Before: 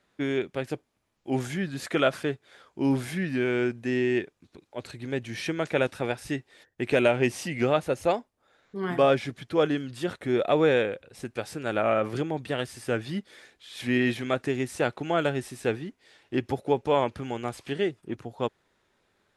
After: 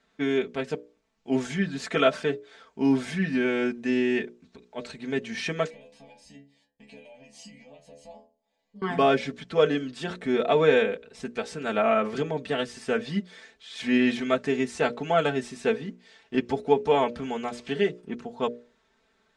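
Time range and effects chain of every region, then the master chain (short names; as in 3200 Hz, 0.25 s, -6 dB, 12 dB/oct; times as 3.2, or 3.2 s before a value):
5.7–8.82 compressor 12:1, threshold -32 dBFS + fixed phaser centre 370 Hz, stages 6 + metallic resonator 69 Hz, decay 0.46 s, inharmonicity 0.002
whole clip: LPF 7900 Hz 24 dB/oct; notches 60/120/180/240/300/360/420/480/540/600 Hz; comb 4.5 ms, depth 82%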